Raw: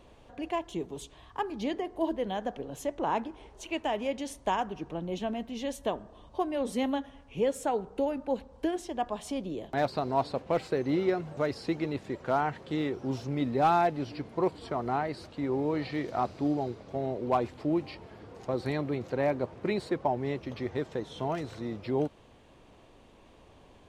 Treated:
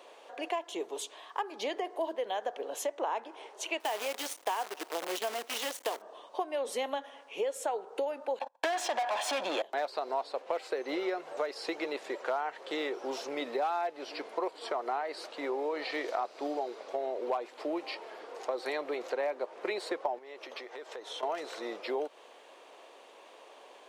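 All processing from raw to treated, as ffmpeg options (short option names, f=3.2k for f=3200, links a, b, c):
-filter_complex "[0:a]asettb=1/sr,asplit=3[a][b][c];[a]atrim=end=3.804[d];[b]atrim=start=3.8:end=6.02,asetpts=PTS-STARTPTS,afade=t=in:d=0.004:c=qsin,afade=t=out:st=2.216:d=0.004:c=qsin,bandreject=f=580:w=6.1,acrusher=bits=7:dc=4:mix=0:aa=0.000001[e];[c]atrim=start=6.016[f];[d][e]acrossfade=d=0.004:c1=hsin:c2=qsin[g];[g][f]acrossfade=d=0.004:c1=qsin:c2=hsin,asettb=1/sr,asplit=3[h][i][j];[h]atrim=end=8.394[k];[i]atrim=start=8.39:end=9.62,asetpts=PTS-STARTPTS,afade=t=in:d=0.004:c=qsin,afade=t=out:st=1.226:d=0.004:c=qsin,agate=range=-48dB:threshold=-48dB:ratio=16:release=100:detection=peak,aecho=1:1:1.2:0.79,atrim=end_sample=54243,asplit=2[l][m];[m]highpass=f=720:p=1,volume=33dB,asoftclip=type=tanh:threshold=-15.5dB[n];[l][n]amix=inputs=2:normalize=0,lowpass=f=2.2k:p=1,volume=-6dB[o];[j]atrim=start=9.616[p];[k][o]acrossfade=d=0.004:c1=hsin:c2=qsin[q];[q][p]acrossfade=d=0.004:c1=qsin:c2=hsin,asettb=1/sr,asplit=3[r][s][t];[r]atrim=end=20.184[u];[s]atrim=start=20.18:end=21.23,asetpts=PTS-STARTPTS,afade=t=in:d=0.004:c=qsin,afade=t=out:st=1.046:d=0.004:c=qsin,lowshelf=f=240:g=-8,acompressor=threshold=-42dB:ratio=8:attack=3.2:release=140:knee=1:detection=peak[v];[t]atrim=start=21.226[w];[u][v]acrossfade=d=0.004:c1=hsin:c2=qsin[x];[x][w]acrossfade=d=0.004:c1=qsin:c2=hsin,highpass=f=440:w=0.5412,highpass=f=440:w=1.3066,acompressor=threshold=-37dB:ratio=5,volume=6.5dB"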